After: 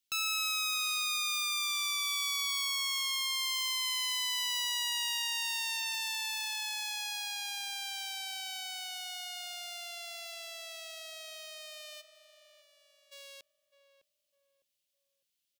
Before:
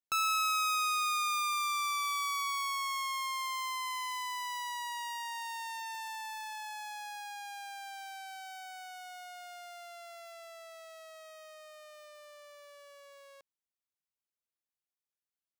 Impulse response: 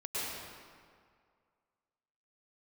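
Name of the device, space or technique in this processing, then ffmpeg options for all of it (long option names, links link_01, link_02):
soft clipper into limiter: -filter_complex "[0:a]asplit=3[link_01][link_02][link_03];[link_01]afade=type=out:start_time=12:duration=0.02[link_04];[link_02]agate=range=-33dB:threshold=-43dB:ratio=3:detection=peak,afade=type=in:start_time=12:duration=0.02,afade=type=out:start_time=13.11:duration=0.02[link_05];[link_03]afade=type=in:start_time=13.11:duration=0.02[link_06];[link_04][link_05][link_06]amix=inputs=3:normalize=0,asoftclip=type=tanh:threshold=-30dB,alimiter=level_in=11.5dB:limit=-24dB:level=0:latency=1,volume=-11.5dB,firequalizer=gain_entry='entry(260,0);entry(990,-10);entry(2900,11);entry(7500,7)':delay=0.05:min_phase=1,asplit=2[link_07][link_08];[link_08]adelay=606,lowpass=frequency=930:poles=1,volume=-9.5dB,asplit=2[link_09][link_10];[link_10]adelay=606,lowpass=frequency=930:poles=1,volume=0.38,asplit=2[link_11][link_12];[link_12]adelay=606,lowpass=frequency=930:poles=1,volume=0.38,asplit=2[link_13][link_14];[link_14]adelay=606,lowpass=frequency=930:poles=1,volume=0.38[link_15];[link_07][link_09][link_11][link_13][link_15]amix=inputs=5:normalize=0,volume=3.5dB"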